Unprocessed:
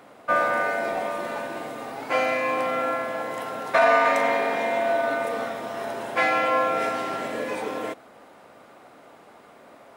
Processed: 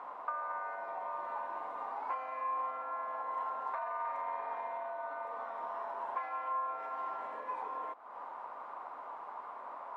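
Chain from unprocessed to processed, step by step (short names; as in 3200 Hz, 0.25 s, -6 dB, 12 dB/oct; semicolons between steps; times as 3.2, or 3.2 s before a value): limiter -17.5 dBFS, peak gain reduction 10 dB; compressor 8:1, threshold -41 dBFS, peak gain reduction 18.5 dB; band-pass 1000 Hz, Q 6.5; gain +14.5 dB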